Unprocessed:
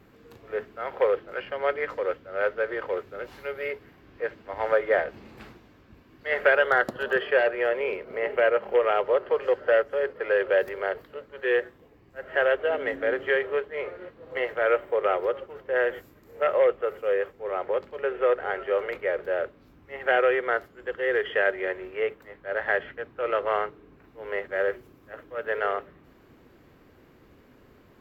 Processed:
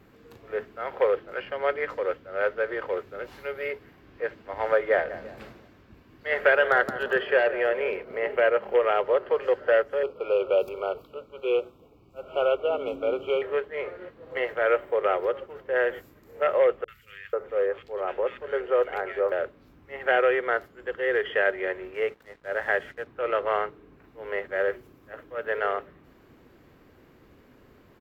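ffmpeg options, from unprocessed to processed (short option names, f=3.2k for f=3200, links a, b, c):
-filter_complex "[0:a]asplit=3[a][b][c];[a]afade=t=out:st=5.09:d=0.02[d];[b]asplit=2[e][f];[f]adelay=171,lowpass=f=2.3k:p=1,volume=-13dB,asplit=2[g][h];[h]adelay=171,lowpass=f=2.3k:p=1,volume=0.4,asplit=2[i][j];[j]adelay=171,lowpass=f=2.3k:p=1,volume=0.4,asplit=2[k][l];[l]adelay=171,lowpass=f=2.3k:p=1,volume=0.4[m];[e][g][i][k][m]amix=inputs=5:normalize=0,afade=t=in:st=5.09:d=0.02,afade=t=out:st=8.01:d=0.02[n];[c]afade=t=in:st=8.01:d=0.02[o];[d][n][o]amix=inputs=3:normalize=0,asettb=1/sr,asplit=3[p][q][r];[p]atrim=end=10.034[s];[q]atrim=start=10.03:end=13.42,asetpts=PTS-STARTPTS,afade=t=in:d=0.004:c=qsin,afade=t=out:st=3.386:d=0.004:c=qsin,asuperstop=centerf=1800:order=20:qfactor=2.3[t];[r]atrim=start=13.416[u];[s][t]acrossfade=d=0.004:c1=hsin:c2=qsin[v];[v][u]acrossfade=d=0.004:c1=qsin:c2=hsin,asettb=1/sr,asplit=3[w][x][y];[w]atrim=end=16.844[z];[x]atrim=start=16.84:end=19.32,asetpts=PTS-STARTPTS,afade=t=in:d=0.004:c=qsin,afade=t=out:st=2.476:d=0.004:c=qsin,acrossover=split=160|1900[aa][ab][ac];[ac]adelay=40[ad];[ab]adelay=490[ae];[aa][ae][ad]amix=inputs=3:normalize=0,atrim=end_sample=109368[af];[y]atrim=start=19.316[ag];[z][af]acrossfade=d=0.004:c1=hsin:c2=qsin[ah];[ah][ag]acrossfade=d=0.004:c1=qsin:c2=hsin,asettb=1/sr,asplit=3[ai][aj][ak];[ai]atrim=end=21.944[al];[aj]atrim=start=21.94:end=23.07,asetpts=PTS-STARTPTS,afade=t=in:d=0.004:c=qsin,afade=t=out:st=1.126:d=0.004:c=qsin,aeval=exprs='sgn(val(0))*max(abs(val(0))-0.0015,0)':c=same[am];[ak]atrim=start=23.066[an];[al][am]acrossfade=d=0.004:c1=hsin:c2=qsin[ao];[ao][an]acrossfade=d=0.004:c1=qsin:c2=hsin"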